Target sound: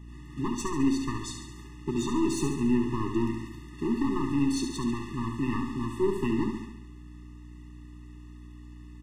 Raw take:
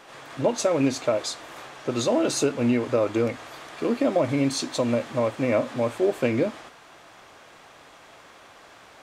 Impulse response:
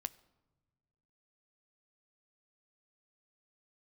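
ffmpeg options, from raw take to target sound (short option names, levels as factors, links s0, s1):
-filter_complex "[0:a]equalizer=f=160:t=o:w=0.67:g=7,equalizer=f=1000:t=o:w=0.67:g=-9,equalizer=f=4000:t=o:w=0.67:g=-4,agate=range=0.501:threshold=0.00794:ratio=16:detection=peak,lowshelf=f=350:g=9,acrossover=split=260[s0][s1];[s0]acompressor=threshold=0.0141:ratio=6[s2];[s1]aeval=exprs='clip(val(0),-1,0.0631)':c=same[s3];[s2][s3]amix=inputs=2:normalize=0,aeval=exprs='val(0)+0.00891*(sin(2*PI*60*n/s)+sin(2*PI*2*60*n/s)/2+sin(2*PI*3*60*n/s)/3+sin(2*PI*4*60*n/s)/4+sin(2*PI*5*60*n/s)/5)':c=same,asplit=2[s4][s5];[s5]aecho=0:1:70|140|210|280|350|420|490:0.473|0.265|0.148|0.0831|0.0465|0.0261|0.0146[s6];[s4][s6]amix=inputs=2:normalize=0,afftfilt=real='re*eq(mod(floor(b*sr/1024/420),2),0)':imag='im*eq(mod(floor(b*sr/1024/420),2),0)':win_size=1024:overlap=0.75,volume=0.708"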